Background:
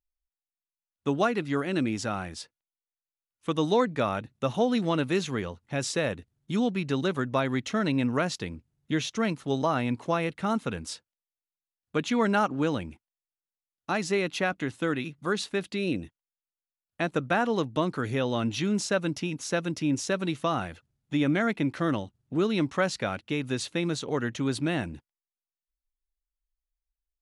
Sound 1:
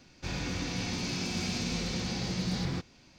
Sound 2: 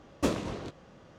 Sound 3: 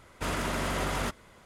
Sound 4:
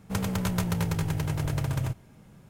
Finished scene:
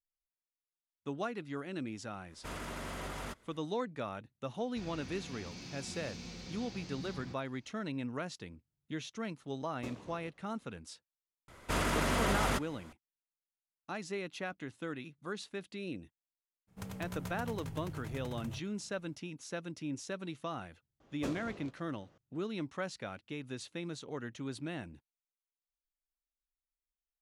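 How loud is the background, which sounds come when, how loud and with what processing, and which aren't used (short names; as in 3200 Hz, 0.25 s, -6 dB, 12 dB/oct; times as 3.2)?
background -12.5 dB
2.23 add 3 -11 dB, fades 0.10 s
4.53 add 1 -13.5 dB
9.6 add 2 -17.5 dB
11.48 add 3 -0.5 dB
16.67 add 4 -15 dB, fades 0.02 s
21 add 2 -11.5 dB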